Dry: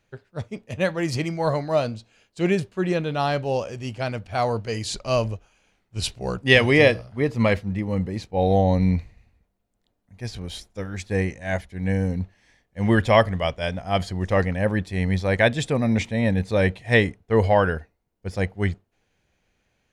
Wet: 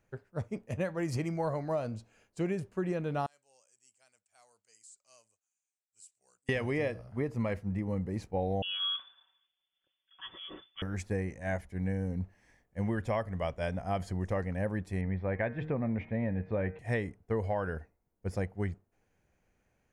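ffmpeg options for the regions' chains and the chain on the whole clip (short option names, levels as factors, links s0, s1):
-filter_complex "[0:a]asettb=1/sr,asplit=3[s0][s1][s2];[s0]atrim=end=3.264[s3];[s1]atrim=start=3.26:end=6.49,asetpts=PTS-STARTPTS,afade=t=in:d=0.004:c=qsin,afade=t=out:st=3.226:d=0.004:c=qsin,bandpass=f=7900:t=q:w=6.7,acompressor=threshold=0.00501:ratio=4:attack=3.2:release=140:knee=1:detection=peak[s4];[s2]atrim=start=6.486[s5];[s3][s4]acrossfade=d=0.004:c1=hsin:c2=qsin[s6];[s6][s5]acrossfade=d=0.004:c1=qsin:c2=hsin,asettb=1/sr,asplit=3[s7][s8][s9];[s7]atrim=end=8.624[s10];[s8]atrim=start=8.62:end=10.82,asetpts=PTS-STARTPTS,afade=t=in:d=0.004:c=qsin,afade=t=out:st=2.196:d=0.004:c=qsin,aecho=1:1:5.1:0.71,atrim=end_sample=97020,lowpass=f=3000:t=q:w=0.5098,lowpass=f=3000:t=q:w=0.6013,lowpass=f=3000:t=q:w=0.9,lowpass=f=3000:t=q:w=2.563,afreqshift=-3500[s11];[s9]atrim=start=10.816[s12];[s10][s11]acrossfade=d=0.004:c1=hsin:c2=qsin[s13];[s13][s12]acrossfade=d=0.004:c1=qsin:c2=hsin,asettb=1/sr,asplit=3[s14][s15][s16];[s14]atrim=end=15.014[s17];[s15]atrim=start=15.01:end=16.79,asetpts=PTS-STARTPTS,afade=t=in:d=0.004:c=qsin,afade=t=out:st=1.776:d=0.004:c=qsin,lowpass=f=2700:w=0.5412,lowpass=f=2700:w=1.3066,bandreject=f=154.7:t=h:w=4,bandreject=f=309.4:t=h:w=4,bandreject=f=464.1:t=h:w=4,bandreject=f=618.8:t=h:w=4,bandreject=f=773.5:t=h:w=4,bandreject=f=928.2:t=h:w=4,bandreject=f=1082.9:t=h:w=4,bandreject=f=1237.6:t=h:w=4,bandreject=f=1392.3:t=h:w=4,bandreject=f=1547:t=h:w=4,bandreject=f=1701.7:t=h:w=4,bandreject=f=1856.4:t=h:w=4,bandreject=f=2011.1:t=h:w=4,bandreject=f=2165.8:t=h:w=4,bandreject=f=2320.5:t=h:w=4,bandreject=f=2475.2:t=h:w=4[s18];[s16]atrim=start=16.786[s19];[s17][s18]acrossfade=d=0.004:c1=hsin:c2=qsin[s20];[s20][s19]acrossfade=d=0.004:c1=qsin:c2=hsin,equalizer=f=3700:w=1.2:g=-12,acompressor=threshold=0.0501:ratio=6,volume=0.708"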